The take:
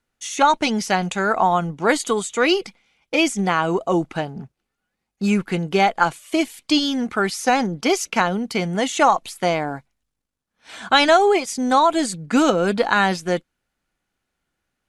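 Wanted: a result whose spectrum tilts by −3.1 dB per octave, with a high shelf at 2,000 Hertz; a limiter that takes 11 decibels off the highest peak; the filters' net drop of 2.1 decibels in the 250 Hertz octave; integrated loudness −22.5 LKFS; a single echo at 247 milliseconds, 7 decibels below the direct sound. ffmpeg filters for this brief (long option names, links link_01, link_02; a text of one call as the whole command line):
ffmpeg -i in.wav -af "equalizer=frequency=250:width_type=o:gain=-3,highshelf=frequency=2000:gain=4.5,alimiter=limit=-10dB:level=0:latency=1,aecho=1:1:247:0.447,volume=-1.5dB" out.wav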